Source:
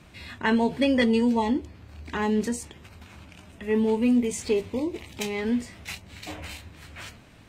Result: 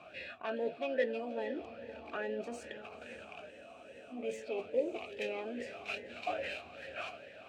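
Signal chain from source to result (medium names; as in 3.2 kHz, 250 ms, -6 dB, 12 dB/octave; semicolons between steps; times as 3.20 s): self-modulated delay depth 0.093 ms; reverse; compression 5:1, threshold -33 dBFS, peak gain reduction 13.5 dB; reverse; harmony voices +4 st -17 dB; on a send: echo that smears into a reverb 552 ms, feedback 45%, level -13 dB; on the sum: spectral freeze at 3.53 s, 0.59 s; talking filter a-e 2.4 Hz; trim +12.5 dB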